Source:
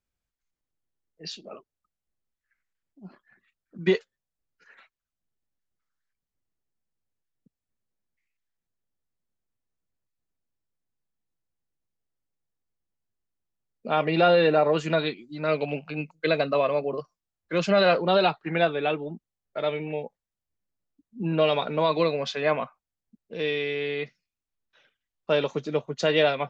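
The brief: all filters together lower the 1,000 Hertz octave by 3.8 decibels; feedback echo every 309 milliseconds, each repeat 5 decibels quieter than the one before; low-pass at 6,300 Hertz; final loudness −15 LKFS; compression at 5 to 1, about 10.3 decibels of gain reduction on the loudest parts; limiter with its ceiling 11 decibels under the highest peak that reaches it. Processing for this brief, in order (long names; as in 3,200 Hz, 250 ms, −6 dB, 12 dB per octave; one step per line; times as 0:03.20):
low-pass filter 6,300 Hz
parametric band 1,000 Hz −6 dB
downward compressor 5 to 1, threshold −29 dBFS
brickwall limiter −29 dBFS
repeating echo 309 ms, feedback 56%, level −5 dB
level +23.5 dB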